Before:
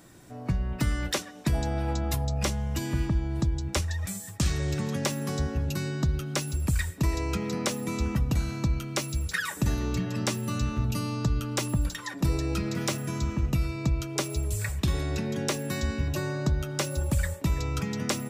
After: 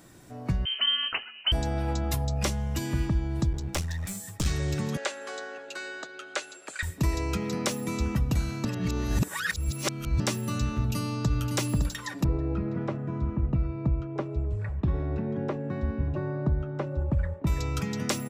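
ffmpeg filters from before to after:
-filter_complex "[0:a]asettb=1/sr,asplit=3[s0][s1][s2];[s0]atrim=end=0.654[s3];[s1]atrim=start=0.65:end=1.52,asetpts=PTS-STARTPTS,afade=t=in:d=0.004:c=qsin,afade=t=out:st=0.866:d=0.004:c=qsin,lowpass=f=2700:t=q:w=0.5098,lowpass=f=2700:t=q:w=0.6013,lowpass=f=2700:t=q:w=0.9,lowpass=f=2700:t=q:w=2.563,afreqshift=-3200[s4];[s2]atrim=start=1.516[s5];[s3][s4]acrossfade=d=0.004:c1=hsin:c2=qsin[s6];[s6][s5]acrossfade=d=0.004:c1=qsin:c2=hsin,asettb=1/sr,asplit=3[s7][s8][s9];[s7]atrim=end=3.524[s10];[s8]atrim=start=3.52:end=4.46,asetpts=PTS-STARTPTS,afade=t=in:d=0.004:c=qsin,afade=t=out:st=0.936:d=0.004:c=qsin,aeval=exprs='clip(val(0),-1,0.0211)':c=same[s11];[s9]atrim=start=4.456[s12];[s10][s11]acrossfade=d=0.004:c1=hsin:c2=qsin[s13];[s13][s12]acrossfade=d=0.004:c1=qsin:c2=hsin,asettb=1/sr,asplit=3[s14][s15][s16];[s14]atrim=end=4.974[s17];[s15]atrim=start=4.97:end=6.83,asetpts=PTS-STARTPTS,afade=t=in:d=0.004:c=qsin,afade=t=out:st=1.856:d=0.004:c=qsin,highpass=f=450:w=0.5412,highpass=f=450:w=1.3066,equalizer=f=1000:t=q:w=4:g=-5,equalizer=f=1500:t=q:w=4:g=7,equalizer=f=5500:t=q:w=4:g=-9,lowpass=f=7500:w=0.5412,lowpass=f=7500:w=1.3066[s18];[s16]atrim=start=6.826[s19];[s17][s18]acrossfade=d=0.004:c1=hsin:c2=qsin[s20];[s20][s19]acrossfade=d=0.004:c1=qsin:c2=hsin,asplit=2[s21][s22];[s22]afade=t=in:st=10.74:d=0.01,afade=t=out:st=11.28:d=0.01,aecho=0:1:560|1120|1680:0.473151|0.0709727|0.0106459[s23];[s21][s23]amix=inputs=2:normalize=0,asettb=1/sr,asplit=3[s24][s25][s26];[s24]atrim=end=12.244[s27];[s25]atrim=start=12.24:end=17.47,asetpts=PTS-STARTPTS,afade=t=in:d=0.004:c=qsin,afade=t=out:st=5.226:d=0.004:c=qsin,lowpass=1100[s28];[s26]atrim=start=17.466[s29];[s27][s28]acrossfade=d=0.004:c1=hsin:c2=qsin[s30];[s30][s29]acrossfade=d=0.004:c1=qsin:c2=hsin,asplit=3[s31][s32][s33];[s31]atrim=end=8.652[s34];[s32]atrim=start=8.648:end=10.202,asetpts=PTS-STARTPTS,areverse[s35];[s33]atrim=start=10.198[s36];[s34][s35]acrossfade=d=0.004:c1=hsin:c2=hsin[s37];[s37][s36]acrossfade=d=0.004:c1=hsin:c2=hsin"

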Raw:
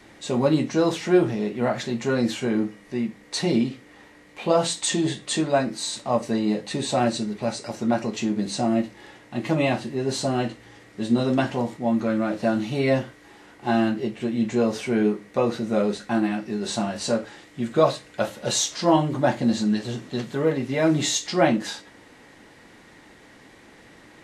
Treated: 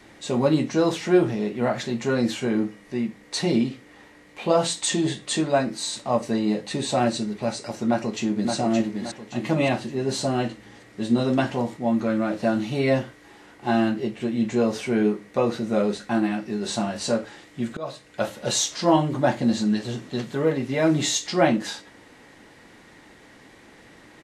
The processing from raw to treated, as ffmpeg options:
-filter_complex "[0:a]asplit=2[s0][s1];[s1]afade=t=in:st=7.87:d=0.01,afade=t=out:st=8.54:d=0.01,aecho=0:1:570|1140|1710|2280|2850:0.562341|0.224937|0.0899746|0.0359898|0.0143959[s2];[s0][s2]amix=inputs=2:normalize=0,asplit=2[s3][s4];[s3]atrim=end=17.77,asetpts=PTS-STARTPTS,afade=t=out:st=17.766:d=0.004:c=hsin:silence=0.0668344[s5];[s4]atrim=start=17.77,asetpts=PTS-STARTPTS,afade=t=in:d=0.5:silence=0.0668344[s6];[s5][s6]concat=n=2:v=0:a=1"

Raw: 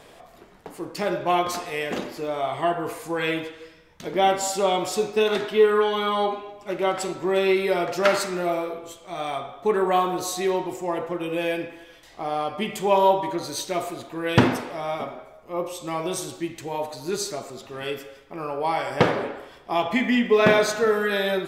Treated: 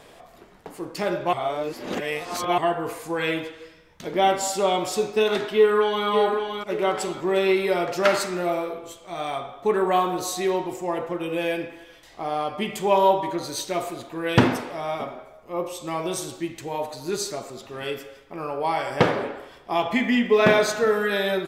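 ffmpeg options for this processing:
-filter_complex "[0:a]asplit=2[s0][s1];[s1]afade=t=in:st=5.56:d=0.01,afade=t=out:st=6.06:d=0.01,aecho=0:1:570|1140|1710|2280:0.501187|0.175416|0.0613954|0.0214884[s2];[s0][s2]amix=inputs=2:normalize=0,asplit=3[s3][s4][s5];[s3]atrim=end=1.332[s6];[s4]atrim=start=1.328:end=2.582,asetpts=PTS-STARTPTS,areverse[s7];[s5]atrim=start=2.578[s8];[s6][s7]acrossfade=d=0.004:c1=hsin:c2=hsin[s9];[s9][s8]acrossfade=d=0.004:c1=hsin:c2=hsin"

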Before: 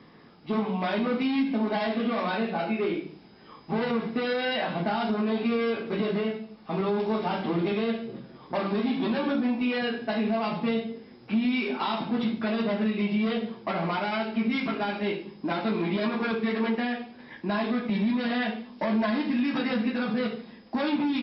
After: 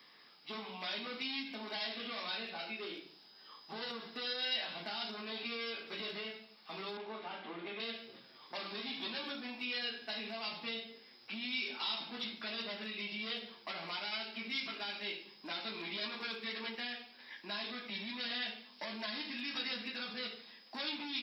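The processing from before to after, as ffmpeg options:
-filter_complex "[0:a]asettb=1/sr,asplit=3[s0][s1][s2];[s0]atrim=end=2.764[s3];[s1]atrim=start=2.76:end=4.45,asetpts=PTS-STARTPTS,afade=t=in:d=0.004:c=qsin,afade=t=out:st=1.686:d=0.004:c=qsin,equalizer=f=2300:t=o:w=0.35:g=-9[s4];[s2]atrim=start=4.446[s5];[s3][s4]acrossfade=d=0.004:c1=hsin:c2=qsin[s6];[s6][s5]acrossfade=d=0.004:c1=qsin:c2=hsin,asettb=1/sr,asplit=3[s7][s8][s9];[s7]atrim=end=6.974[s10];[s8]atrim=start=6.97:end=7.8,asetpts=PTS-STARTPTS,afade=t=in:d=0.004:c=qsin,afade=t=out:st=0.826:d=0.004:c=qsin,highpass=180,lowpass=2100[s11];[s9]atrim=start=7.796[s12];[s10][s11]acrossfade=d=0.004:c1=hsin:c2=qsin[s13];[s13][s12]acrossfade=d=0.004:c1=qsin:c2=hsin,aderivative,acrossover=split=450|3000[s14][s15][s16];[s15]acompressor=threshold=0.00141:ratio=2[s17];[s14][s17][s16]amix=inputs=3:normalize=0,volume=2.51"

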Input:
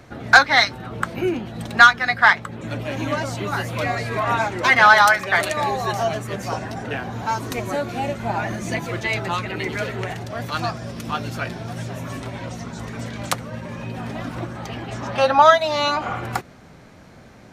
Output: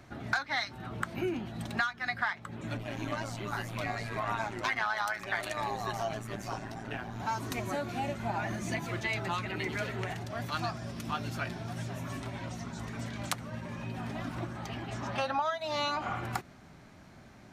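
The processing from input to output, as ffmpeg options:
-filter_complex "[0:a]asettb=1/sr,asplit=3[s0][s1][s2];[s0]atrim=end=2.774[s3];[s1]atrim=start=2.77:end=7.2,asetpts=PTS-STARTPTS,afade=t=in:d=0.004:c=qsin,afade=t=out:st=4.426:d=0.004:c=qsin,tremolo=f=110:d=0.667[s4];[s2]atrim=start=7.196[s5];[s3][s4]acrossfade=d=0.004:c1=hsin:c2=qsin[s6];[s6][s5]acrossfade=d=0.004:c1=qsin:c2=hsin,equalizer=f=490:w=6.5:g=-10.5,acompressor=threshold=0.1:ratio=16,volume=0.422"

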